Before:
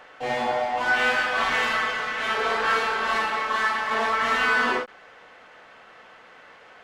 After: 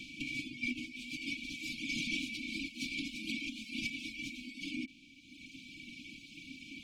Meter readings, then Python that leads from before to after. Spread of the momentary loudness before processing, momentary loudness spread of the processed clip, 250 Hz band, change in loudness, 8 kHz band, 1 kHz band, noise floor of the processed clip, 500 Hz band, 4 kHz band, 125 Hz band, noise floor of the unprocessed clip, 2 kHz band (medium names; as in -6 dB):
5 LU, 13 LU, -2.5 dB, -16.5 dB, -7.0 dB, under -40 dB, -57 dBFS, under -30 dB, -9.5 dB, no reading, -50 dBFS, -17.0 dB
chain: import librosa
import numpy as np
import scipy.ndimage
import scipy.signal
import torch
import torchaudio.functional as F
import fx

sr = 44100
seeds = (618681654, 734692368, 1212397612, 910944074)

y = fx.dereverb_blind(x, sr, rt60_s=1.3)
y = fx.spec_gate(y, sr, threshold_db=-15, keep='weak')
y = fx.over_compress(y, sr, threshold_db=-46.0, ratio=-1.0)
y = fx.brickwall_bandstop(y, sr, low_hz=340.0, high_hz=2200.0)
y = fx.small_body(y, sr, hz=(270.0, 2300.0), ring_ms=45, db=16)
y = y * 10.0 ** (2.5 / 20.0)